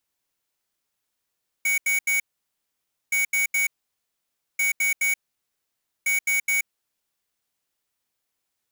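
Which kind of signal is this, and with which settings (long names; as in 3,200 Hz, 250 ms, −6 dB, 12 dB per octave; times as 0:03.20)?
beeps in groups square 2,240 Hz, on 0.13 s, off 0.08 s, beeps 3, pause 0.92 s, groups 4, −22 dBFS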